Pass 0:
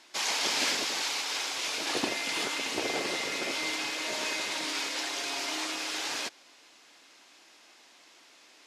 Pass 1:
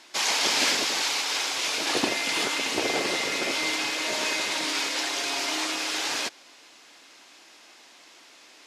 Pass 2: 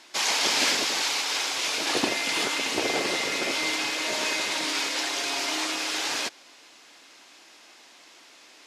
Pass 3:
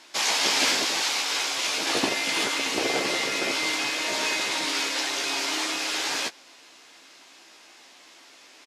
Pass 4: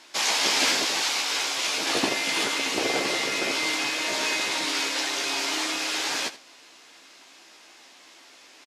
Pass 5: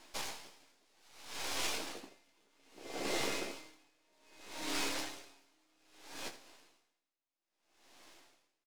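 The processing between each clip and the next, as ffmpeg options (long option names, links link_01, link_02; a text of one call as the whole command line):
ffmpeg -i in.wav -af "acontrast=29" out.wav
ffmpeg -i in.wav -af anull out.wav
ffmpeg -i in.wav -filter_complex "[0:a]asplit=2[link_01][link_02];[link_02]adelay=15,volume=-7dB[link_03];[link_01][link_03]amix=inputs=2:normalize=0" out.wav
ffmpeg -i in.wav -af "aecho=1:1:80:0.158" out.wav
ffmpeg -i in.wav -filter_complex "[0:a]acrossover=split=120|970[link_01][link_02][link_03];[link_03]aeval=exprs='max(val(0),0)':channel_layout=same[link_04];[link_01][link_02][link_04]amix=inputs=3:normalize=0,asplit=2[link_05][link_06];[link_06]adelay=29,volume=-12dB[link_07];[link_05][link_07]amix=inputs=2:normalize=0,aeval=exprs='val(0)*pow(10,-39*(0.5-0.5*cos(2*PI*0.62*n/s))/20)':channel_layout=same,volume=-5.5dB" out.wav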